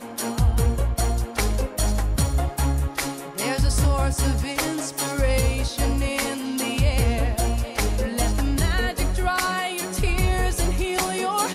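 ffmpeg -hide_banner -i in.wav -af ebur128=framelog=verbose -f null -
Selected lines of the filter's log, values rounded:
Integrated loudness:
  I:         -23.7 LUFS
  Threshold: -33.7 LUFS
Loudness range:
  LRA:         0.6 LU
  Threshold: -43.7 LUFS
  LRA low:   -24.0 LUFS
  LRA high:  -23.4 LUFS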